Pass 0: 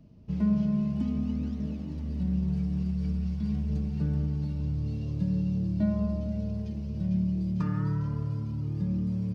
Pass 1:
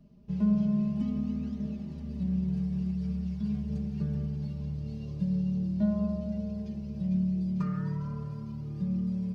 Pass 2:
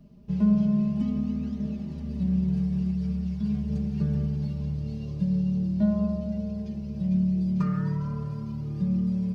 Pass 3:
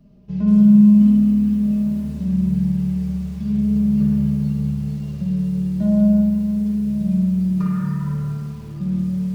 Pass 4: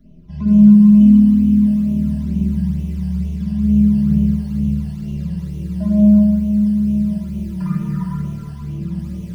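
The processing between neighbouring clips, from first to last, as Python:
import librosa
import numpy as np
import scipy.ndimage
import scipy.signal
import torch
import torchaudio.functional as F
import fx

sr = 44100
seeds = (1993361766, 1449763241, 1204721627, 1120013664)

y1 = x + 0.71 * np.pad(x, (int(5.0 * sr / 1000.0), 0))[:len(x)]
y1 = y1 * 10.0 ** (-4.5 / 20.0)
y2 = fx.rider(y1, sr, range_db=10, speed_s=2.0)
y2 = y2 * 10.0 ** (3.0 / 20.0)
y3 = fx.rev_spring(y2, sr, rt60_s=1.4, pass_ms=(48, 53), chirp_ms=35, drr_db=1.0)
y3 = fx.echo_crushed(y3, sr, ms=178, feedback_pct=35, bits=7, wet_db=-10.0)
y4 = fx.phaser_stages(y3, sr, stages=12, low_hz=380.0, high_hz=1600.0, hz=2.2, feedback_pct=30)
y4 = fx.room_shoebox(y4, sr, seeds[0], volume_m3=3100.0, walls='furnished', distance_m=3.0)
y4 = y4 * 10.0 ** (2.0 / 20.0)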